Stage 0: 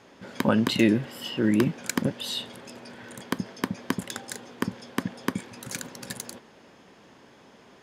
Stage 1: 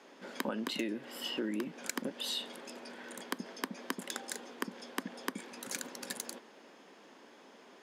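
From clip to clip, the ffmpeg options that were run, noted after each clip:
ffmpeg -i in.wav -af "highpass=frequency=230:width=0.5412,highpass=frequency=230:width=1.3066,acompressor=threshold=-29dB:ratio=12,volume=-3dB" out.wav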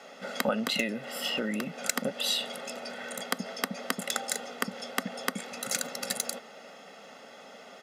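ffmpeg -i in.wav -af "aecho=1:1:1.5:0.82,volume=7dB" out.wav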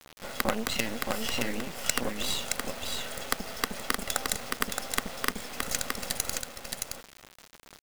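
ffmpeg -i in.wav -af "acrusher=bits=4:dc=4:mix=0:aa=0.000001,aecho=1:1:620:0.631,volume=1.5dB" out.wav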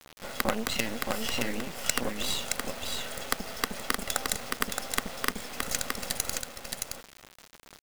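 ffmpeg -i in.wav -af anull out.wav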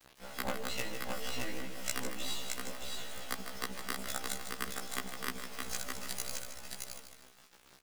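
ffmpeg -i in.wav -af "aecho=1:1:154|308|462|616|770:0.355|0.145|0.0596|0.0245|0.01,afftfilt=real='re*1.73*eq(mod(b,3),0)':imag='im*1.73*eq(mod(b,3),0)':win_size=2048:overlap=0.75,volume=-6dB" out.wav

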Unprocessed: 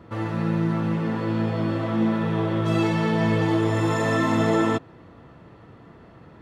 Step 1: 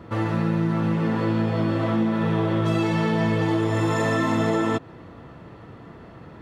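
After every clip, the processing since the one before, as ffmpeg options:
ffmpeg -i in.wav -af "acompressor=threshold=-23dB:ratio=6,volume=4.5dB" out.wav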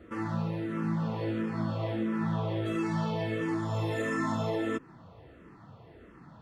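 ffmpeg -i in.wav -filter_complex "[0:a]asplit=2[link_01][link_02];[link_02]afreqshift=-1.5[link_03];[link_01][link_03]amix=inputs=2:normalize=1,volume=-6dB" out.wav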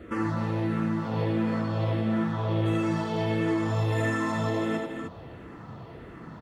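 ffmpeg -i in.wav -filter_complex "[0:a]acompressor=threshold=-33dB:ratio=6,asplit=2[link_01][link_02];[link_02]aecho=0:1:82|249|302:0.562|0.355|0.422[link_03];[link_01][link_03]amix=inputs=2:normalize=0,volume=7dB" out.wav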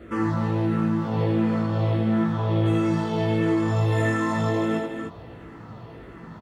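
ffmpeg -i in.wav -filter_complex "[0:a]asplit=2[link_01][link_02];[link_02]adelay=18,volume=-3dB[link_03];[link_01][link_03]amix=inputs=2:normalize=0" out.wav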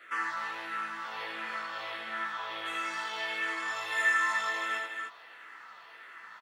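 ffmpeg -i in.wav -af "highpass=frequency=1600:width_type=q:width=1.6" out.wav

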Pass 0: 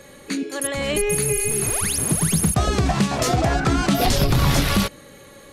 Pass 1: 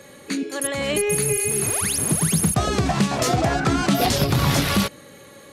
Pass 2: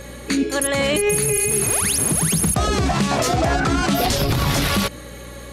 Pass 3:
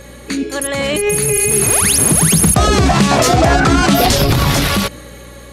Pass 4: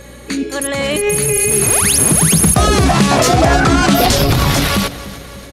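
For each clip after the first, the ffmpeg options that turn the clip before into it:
ffmpeg -i in.wav -af "highpass=86" out.wav
ffmpeg -i in.wav -af "asubboost=boost=3:cutoff=65,alimiter=limit=-17dB:level=0:latency=1:release=97,aeval=exprs='val(0)+0.00562*(sin(2*PI*60*n/s)+sin(2*PI*2*60*n/s)/2+sin(2*PI*3*60*n/s)/3+sin(2*PI*4*60*n/s)/4+sin(2*PI*5*60*n/s)/5)':channel_layout=same,volume=7dB" out.wav
ffmpeg -i in.wav -af "dynaudnorm=framelen=240:gausssize=11:maxgain=11.5dB" out.wav
ffmpeg -i in.wav -af "aecho=1:1:295|590|885|1180|1475:0.141|0.0749|0.0397|0.021|0.0111" out.wav

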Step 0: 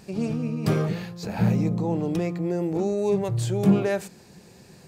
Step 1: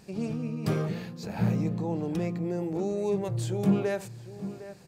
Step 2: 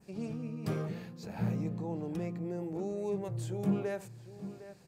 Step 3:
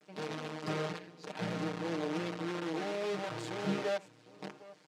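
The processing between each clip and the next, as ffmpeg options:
ffmpeg -i in.wav -filter_complex "[0:a]asplit=2[link_01][link_02];[link_02]adelay=758,volume=-13dB,highshelf=frequency=4000:gain=-17.1[link_03];[link_01][link_03]amix=inputs=2:normalize=0,volume=-5dB" out.wav
ffmpeg -i in.wav -af "adynamicequalizer=threshold=0.00178:dfrequency=4100:dqfactor=1:tfrequency=4100:tqfactor=1:attack=5:release=100:ratio=0.375:range=2:mode=cutabove:tftype=bell,volume=-6.5dB" out.wav
ffmpeg -i in.wav -af "acrusher=bits=7:dc=4:mix=0:aa=0.000001,highpass=270,lowpass=4900,aecho=1:1:6.5:0.81" out.wav

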